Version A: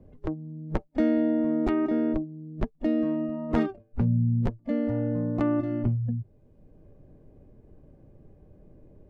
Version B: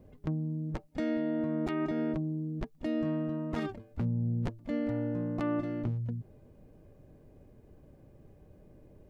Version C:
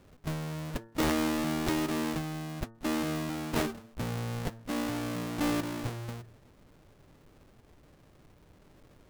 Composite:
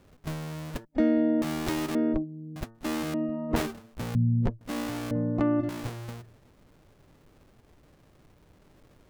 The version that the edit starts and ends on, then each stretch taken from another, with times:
C
0.85–1.42 from A
1.95–2.56 from A
3.14–3.56 from A
4.15–4.61 from A
5.11–5.69 from A
not used: B

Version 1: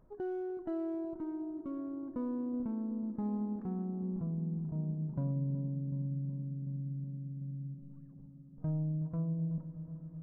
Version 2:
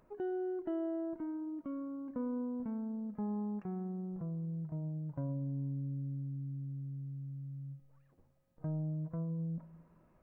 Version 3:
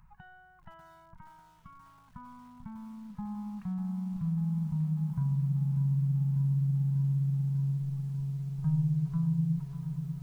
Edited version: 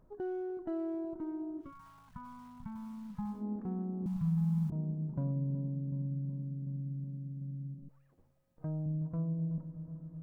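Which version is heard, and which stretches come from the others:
1
1.65–3.38 from 3, crossfade 0.16 s
4.06–4.7 from 3
7.89–8.86 from 2

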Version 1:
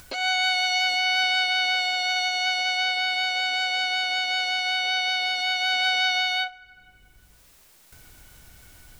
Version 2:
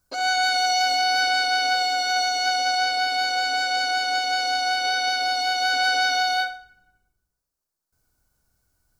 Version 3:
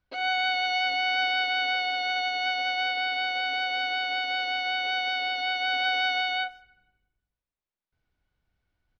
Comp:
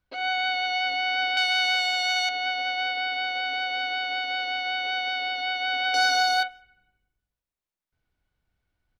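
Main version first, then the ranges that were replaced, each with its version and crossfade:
3
1.37–2.29 from 1
5.94–6.43 from 2

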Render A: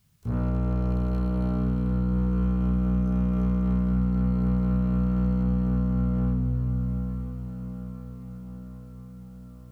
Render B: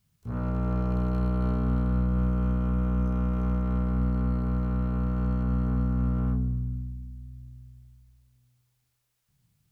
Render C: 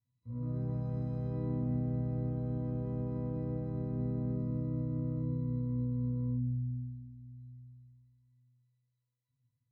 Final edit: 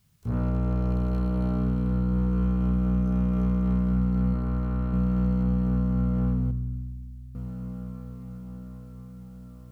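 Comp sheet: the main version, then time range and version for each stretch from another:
A
4.34–4.93 from B
6.51–7.35 from B
not used: C

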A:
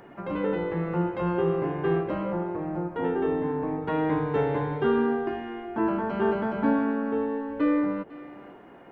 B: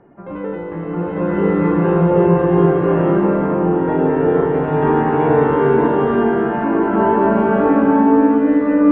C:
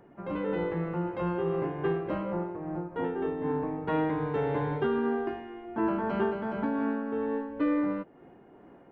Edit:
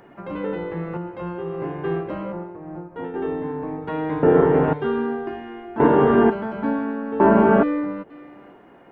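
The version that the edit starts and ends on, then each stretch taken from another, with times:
A
0.97–1.6 from C
2.32–3.14 from C
4.23–4.73 from B
5.8–6.3 from B
7.2–7.63 from B

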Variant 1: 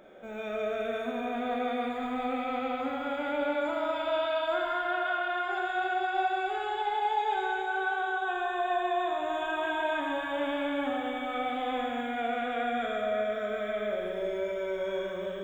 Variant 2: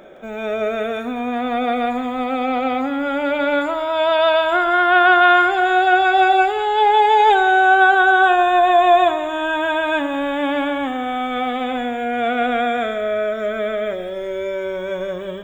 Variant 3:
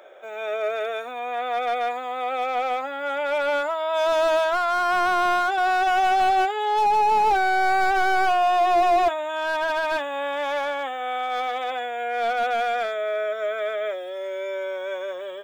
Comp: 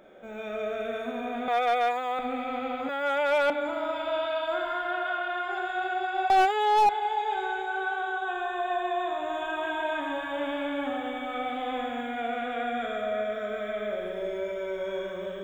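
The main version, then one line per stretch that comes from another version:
1
1.48–2.19 from 3
2.89–3.5 from 3
6.3–6.89 from 3
not used: 2

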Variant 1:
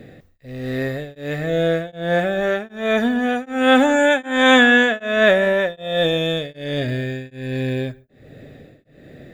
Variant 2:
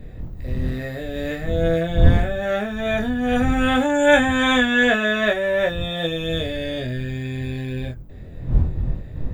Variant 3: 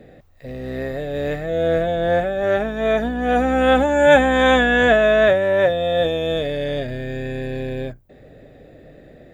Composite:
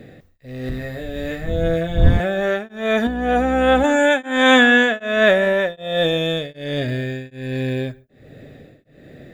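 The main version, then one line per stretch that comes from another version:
1
0.69–2.2 from 2
3.07–3.84 from 3

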